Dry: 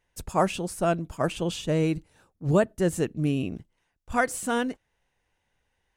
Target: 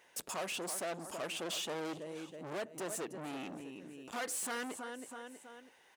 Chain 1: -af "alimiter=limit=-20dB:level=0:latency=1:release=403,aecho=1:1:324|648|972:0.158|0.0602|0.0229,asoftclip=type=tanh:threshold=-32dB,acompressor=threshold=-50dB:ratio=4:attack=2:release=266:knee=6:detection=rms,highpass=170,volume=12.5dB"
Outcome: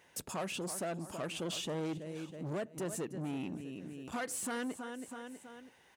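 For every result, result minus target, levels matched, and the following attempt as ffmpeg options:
125 Hz band +9.5 dB; soft clipping: distortion −5 dB
-af "alimiter=limit=-20dB:level=0:latency=1:release=403,aecho=1:1:324|648|972:0.158|0.0602|0.0229,asoftclip=type=tanh:threshold=-32dB,acompressor=threshold=-50dB:ratio=4:attack=2:release=266:knee=6:detection=rms,highpass=350,volume=12.5dB"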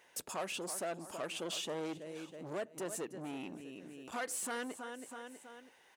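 soft clipping: distortion −5 dB
-af "alimiter=limit=-20dB:level=0:latency=1:release=403,aecho=1:1:324|648|972:0.158|0.0602|0.0229,asoftclip=type=tanh:threshold=-40dB,acompressor=threshold=-50dB:ratio=4:attack=2:release=266:knee=6:detection=rms,highpass=350,volume=12.5dB"

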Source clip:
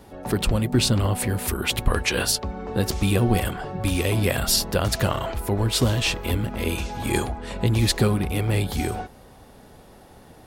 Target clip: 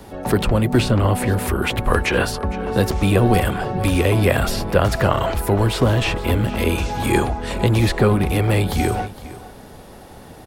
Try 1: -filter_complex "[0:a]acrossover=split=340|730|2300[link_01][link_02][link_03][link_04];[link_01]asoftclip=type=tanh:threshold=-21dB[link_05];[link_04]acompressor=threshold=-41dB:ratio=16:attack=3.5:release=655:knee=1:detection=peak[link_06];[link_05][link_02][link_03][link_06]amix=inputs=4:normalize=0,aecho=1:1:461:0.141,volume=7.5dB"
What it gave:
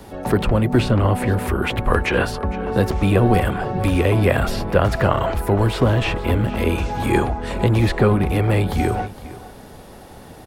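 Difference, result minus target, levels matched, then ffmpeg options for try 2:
downward compressor: peak gain reduction +7 dB
-filter_complex "[0:a]acrossover=split=340|730|2300[link_01][link_02][link_03][link_04];[link_01]asoftclip=type=tanh:threshold=-21dB[link_05];[link_04]acompressor=threshold=-33.5dB:ratio=16:attack=3.5:release=655:knee=1:detection=peak[link_06];[link_05][link_02][link_03][link_06]amix=inputs=4:normalize=0,aecho=1:1:461:0.141,volume=7.5dB"

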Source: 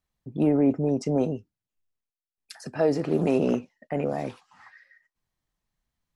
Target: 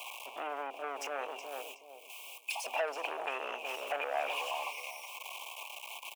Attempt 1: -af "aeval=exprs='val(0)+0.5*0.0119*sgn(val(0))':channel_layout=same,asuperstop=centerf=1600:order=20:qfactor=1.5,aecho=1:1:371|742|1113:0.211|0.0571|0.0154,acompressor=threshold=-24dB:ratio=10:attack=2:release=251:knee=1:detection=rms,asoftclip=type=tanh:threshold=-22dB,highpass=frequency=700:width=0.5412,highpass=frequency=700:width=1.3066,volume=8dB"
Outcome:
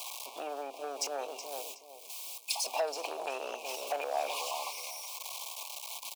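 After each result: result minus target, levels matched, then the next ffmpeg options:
8,000 Hz band +8.0 dB; soft clipping: distortion −9 dB
-af "aeval=exprs='val(0)+0.5*0.0119*sgn(val(0))':channel_layout=same,asuperstop=centerf=1600:order=20:qfactor=1.5,aecho=1:1:371|742|1113:0.211|0.0571|0.0154,acompressor=threshold=-24dB:ratio=10:attack=2:release=251:knee=1:detection=rms,asoftclip=type=tanh:threshold=-22dB,highpass=frequency=700:width=0.5412,highpass=frequency=700:width=1.3066,highshelf=frequency=3400:width_type=q:width=3:gain=-7,volume=8dB"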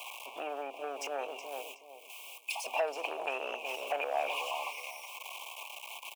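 soft clipping: distortion −9 dB
-af "aeval=exprs='val(0)+0.5*0.0119*sgn(val(0))':channel_layout=same,asuperstop=centerf=1600:order=20:qfactor=1.5,aecho=1:1:371|742|1113:0.211|0.0571|0.0154,acompressor=threshold=-24dB:ratio=10:attack=2:release=251:knee=1:detection=rms,asoftclip=type=tanh:threshold=-28.5dB,highpass=frequency=700:width=0.5412,highpass=frequency=700:width=1.3066,highshelf=frequency=3400:width_type=q:width=3:gain=-7,volume=8dB"

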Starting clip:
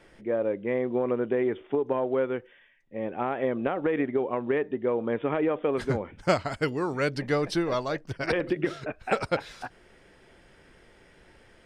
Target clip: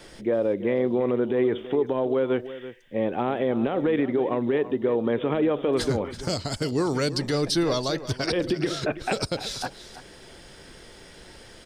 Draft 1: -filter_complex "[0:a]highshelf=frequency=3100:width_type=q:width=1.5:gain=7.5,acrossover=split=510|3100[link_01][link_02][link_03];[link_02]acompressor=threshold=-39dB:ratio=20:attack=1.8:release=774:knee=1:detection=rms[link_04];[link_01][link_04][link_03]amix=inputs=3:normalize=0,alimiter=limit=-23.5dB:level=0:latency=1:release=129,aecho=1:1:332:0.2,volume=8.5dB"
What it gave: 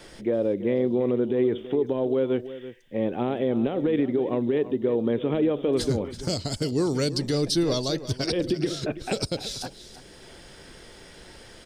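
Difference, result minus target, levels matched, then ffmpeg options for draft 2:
downward compressor: peak gain reduction +10 dB
-filter_complex "[0:a]highshelf=frequency=3100:width_type=q:width=1.5:gain=7.5,acrossover=split=510|3100[link_01][link_02][link_03];[link_02]acompressor=threshold=-28.5dB:ratio=20:attack=1.8:release=774:knee=1:detection=rms[link_04];[link_01][link_04][link_03]amix=inputs=3:normalize=0,alimiter=limit=-23.5dB:level=0:latency=1:release=129,aecho=1:1:332:0.2,volume=8.5dB"

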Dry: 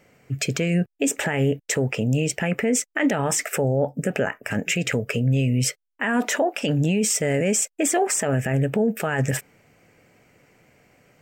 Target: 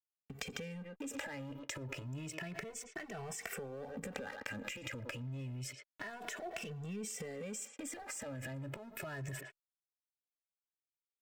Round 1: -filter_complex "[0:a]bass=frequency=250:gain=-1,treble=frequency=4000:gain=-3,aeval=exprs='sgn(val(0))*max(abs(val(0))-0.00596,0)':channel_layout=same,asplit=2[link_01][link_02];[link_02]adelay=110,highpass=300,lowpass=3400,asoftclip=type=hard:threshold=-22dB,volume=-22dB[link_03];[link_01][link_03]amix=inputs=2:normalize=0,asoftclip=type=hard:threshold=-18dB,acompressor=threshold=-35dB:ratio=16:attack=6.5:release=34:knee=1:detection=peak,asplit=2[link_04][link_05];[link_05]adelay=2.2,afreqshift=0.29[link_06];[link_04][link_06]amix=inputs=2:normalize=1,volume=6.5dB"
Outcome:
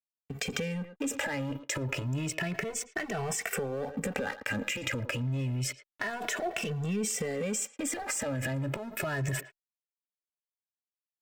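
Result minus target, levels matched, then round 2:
downward compressor: peak gain reduction −11 dB
-filter_complex "[0:a]bass=frequency=250:gain=-1,treble=frequency=4000:gain=-3,aeval=exprs='sgn(val(0))*max(abs(val(0))-0.00596,0)':channel_layout=same,asplit=2[link_01][link_02];[link_02]adelay=110,highpass=300,lowpass=3400,asoftclip=type=hard:threshold=-22dB,volume=-22dB[link_03];[link_01][link_03]amix=inputs=2:normalize=0,asoftclip=type=hard:threshold=-18dB,acompressor=threshold=-47dB:ratio=16:attack=6.5:release=34:knee=1:detection=peak,asplit=2[link_04][link_05];[link_05]adelay=2.2,afreqshift=0.29[link_06];[link_04][link_06]amix=inputs=2:normalize=1,volume=6.5dB"

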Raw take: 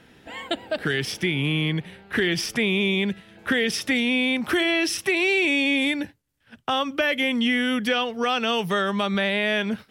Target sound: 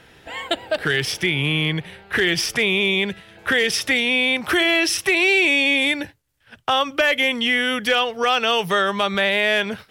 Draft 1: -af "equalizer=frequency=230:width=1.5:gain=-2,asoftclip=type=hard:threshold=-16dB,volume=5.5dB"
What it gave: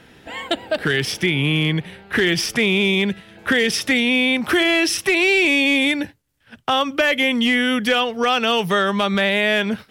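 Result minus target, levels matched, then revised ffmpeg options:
250 Hz band +5.0 dB
-af "equalizer=frequency=230:width=1.5:gain=-10,asoftclip=type=hard:threshold=-16dB,volume=5.5dB"

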